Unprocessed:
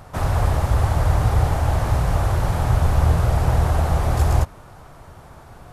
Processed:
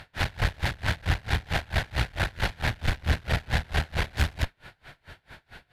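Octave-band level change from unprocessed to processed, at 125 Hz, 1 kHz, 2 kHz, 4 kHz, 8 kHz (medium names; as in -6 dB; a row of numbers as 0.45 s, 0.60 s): -11.5 dB, -9.5 dB, +3.5 dB, +4.5 dB, -7.5 dB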